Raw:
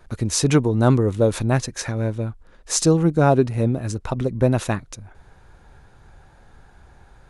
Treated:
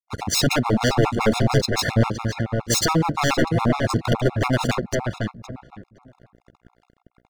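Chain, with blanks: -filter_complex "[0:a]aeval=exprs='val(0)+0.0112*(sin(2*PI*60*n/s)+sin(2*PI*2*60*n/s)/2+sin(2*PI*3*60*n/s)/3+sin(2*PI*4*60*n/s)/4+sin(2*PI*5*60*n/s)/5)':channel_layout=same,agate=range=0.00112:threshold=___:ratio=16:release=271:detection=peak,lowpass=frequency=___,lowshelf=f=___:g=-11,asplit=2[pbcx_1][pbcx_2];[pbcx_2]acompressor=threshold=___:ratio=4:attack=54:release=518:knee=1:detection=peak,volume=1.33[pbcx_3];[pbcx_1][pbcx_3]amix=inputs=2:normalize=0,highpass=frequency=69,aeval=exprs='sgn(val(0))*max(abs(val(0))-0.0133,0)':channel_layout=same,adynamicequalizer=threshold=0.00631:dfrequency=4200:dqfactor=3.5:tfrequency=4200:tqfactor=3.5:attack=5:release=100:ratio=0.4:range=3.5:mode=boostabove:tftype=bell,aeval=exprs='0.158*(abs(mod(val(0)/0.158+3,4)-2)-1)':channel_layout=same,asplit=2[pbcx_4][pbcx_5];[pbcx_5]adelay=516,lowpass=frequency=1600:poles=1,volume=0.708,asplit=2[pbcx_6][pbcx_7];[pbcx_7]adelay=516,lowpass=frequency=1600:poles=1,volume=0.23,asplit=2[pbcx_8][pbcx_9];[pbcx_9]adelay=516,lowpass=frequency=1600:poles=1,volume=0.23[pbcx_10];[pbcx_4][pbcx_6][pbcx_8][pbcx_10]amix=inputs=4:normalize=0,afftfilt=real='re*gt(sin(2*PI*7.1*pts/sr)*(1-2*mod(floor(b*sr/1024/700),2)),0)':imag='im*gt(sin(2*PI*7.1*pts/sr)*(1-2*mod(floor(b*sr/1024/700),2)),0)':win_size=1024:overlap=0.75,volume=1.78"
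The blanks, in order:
0.0126, 6300, 91, 0.0355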